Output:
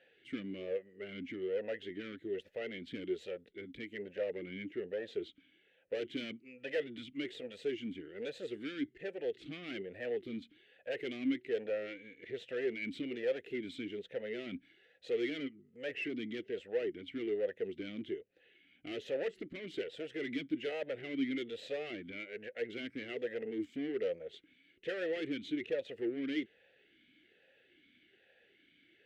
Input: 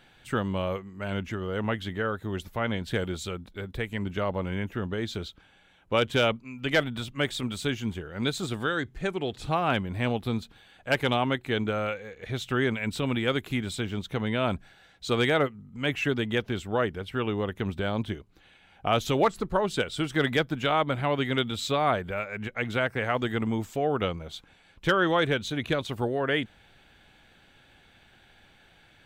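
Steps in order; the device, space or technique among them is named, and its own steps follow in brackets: talk box (tube stage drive 30 dB, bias 0.6; vowel sweep e-i 1.2 Hz); gain +6.5 dB

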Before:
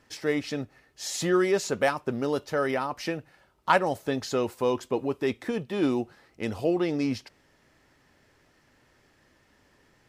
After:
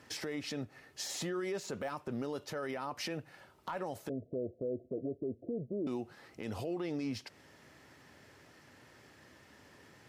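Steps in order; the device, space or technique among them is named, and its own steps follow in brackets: 4.09–5.87 Chebyshev low-pass 690 Hz, order 10; podcast mastering chain (HPF 73 Hz 24 dB/oct; de-esser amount 85%; compressor 2:1, threshold -41 dBFS, peak gain reduction 12 dB; limiter -33.5 dBFS, peak gain reduction 11 dB; gain +4.5 dB; MP3 96 kbps 48000 Hz)

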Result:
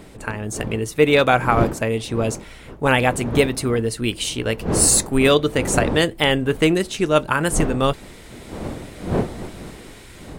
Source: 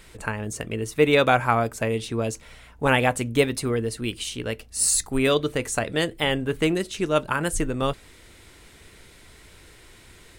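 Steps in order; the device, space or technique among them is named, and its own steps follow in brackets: smartphone video outdoors (wind noise 390 Hz -34 dBFS; AGC gain up to 7 dB; AAC 128 kbps 48000 Hz)

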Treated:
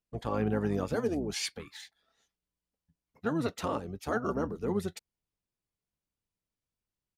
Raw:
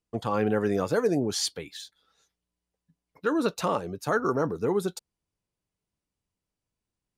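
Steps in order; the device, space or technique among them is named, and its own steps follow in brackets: octave pedal (harmoniser -12 st -4 dB); gain -7 dB

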